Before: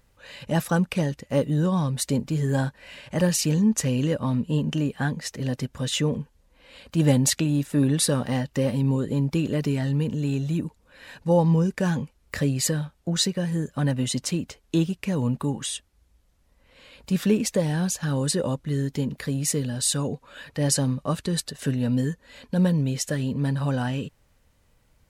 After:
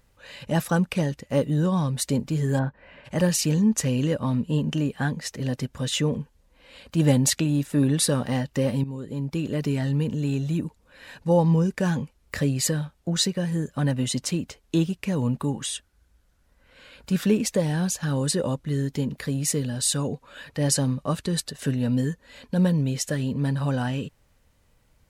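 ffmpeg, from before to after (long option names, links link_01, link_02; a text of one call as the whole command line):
ffmpeg -i in.wav -filter_complex "[0:a]asplit=3[link_01][link_02][link_03];[link_01]afade=type=out:start_time=2.58:duration=0.02[link_04];[link_02]lowpass=1600,afade=type=in:start_time=2.58:duration=0.02,afade=type=out:start_time=3.04:duration=0.02[link_05];[link_03]afade=type=in:start_time=3.04:duration=0.02[link_06];[link_04][link_05][link_06]amix=inputs=3:normalize=0,asettb=1/sr,asplit=3[link_07][link_08][link_09];[link_07]atrim=end=15.744[link_10];[link_08]atrim=start=15.74:end=17.21,asetpts=PTS-STARTPTS,afade=type=in:duration=0.004:curve=qsin,afade=type=out:start_time=1.466:duration=0.004:curve=qsin,equalizer=frequency=1500:width_type=o:width=0.26:gain=10[link_11];[link_09]atrim=start=17.206[link_12];[link_10][link_11]acrossfade=duration=0.004:curve1=hsin:curve2=qsin[link_13];[link_13][link_12]acrossfade=duration=0.004:curve1=qsin:curve2=hsin,asplit=2[link_14][link_15];[link_14]atrim=end=8.84,asetpts=PTS-STARTPTS,afade=type=out:start_time=8.836:duration=0.004:curve=hsin:silence=0.211349[link_16];[link_15]atrim=start=8.84,asetpts=PTS-STARTPTS,afade=type=in:duration=0.93:silence=0.211349[link_17];[link_16][link_17]concat=n=2:v=0:a=1" out.wav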